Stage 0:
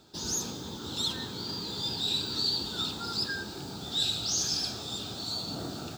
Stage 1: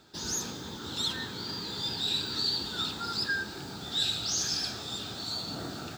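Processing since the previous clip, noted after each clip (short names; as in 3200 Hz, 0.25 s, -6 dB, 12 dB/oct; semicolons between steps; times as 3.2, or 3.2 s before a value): bell 1800 Hz +8 dB 0.98 oct; gain -1.5 dB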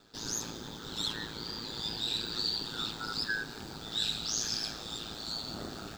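ring modulator 55 Hz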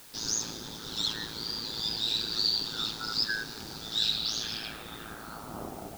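low-pass sweep 5800 Hz -> 750 Hz, 3.98–5.87; added noise white -52 dBFS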